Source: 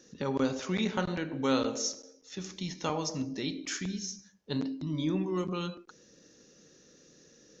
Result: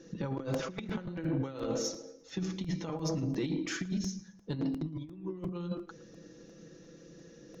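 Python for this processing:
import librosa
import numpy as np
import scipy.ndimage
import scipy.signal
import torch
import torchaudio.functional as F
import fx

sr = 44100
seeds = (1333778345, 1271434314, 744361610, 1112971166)

p1 = fx.lowpass(x, sr, hz=2300.0, slope=6)
p2 = fx.low_shelf(p1, sr, hz=330.0, db=7.5)
p3 = fx.hum_notches(p2, sr, base_hz=50, count=4)
p4 = p3 + 0.61 * np.pad(p3, (int(6.0 * sr / 1000.0), 0))[:len(p3)]
p5 = fx.over_compress(p4, sr, threshold_db=-31.0, ratio=-0.5)
p6 = 10.0 ** (-20.5 / 20.0) * np.tanh(p5 / 10.0 ** (-20.5 / 20.0))
p7 = p6 + fx.echo_feedback(p6, sr, ms=113, feedback_pct=44, wet_db=-22, dry=0)
p8 = fx.buffer_crackle(p7, sr, first_s=0.54, period_s=0.35, block=128, kind='repeat')
y = F.gain(torch.from_numpy(p8), -2.0).numpy()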